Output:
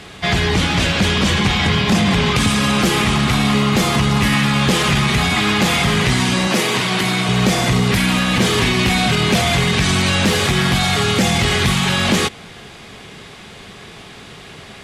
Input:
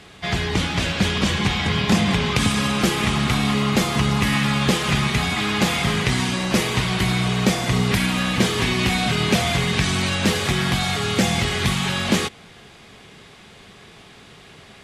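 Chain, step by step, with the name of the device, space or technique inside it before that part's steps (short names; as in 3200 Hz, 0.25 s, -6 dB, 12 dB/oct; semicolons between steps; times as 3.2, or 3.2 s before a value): soft clipper into limiter (soft clip -10.5 dBFS, distortion -21 dB; limiter -16 dBFS, peak gain reduction 4.5 dB); 6.47–7.29 HPF 190 Hz 12 dB/oct; gain +8 dB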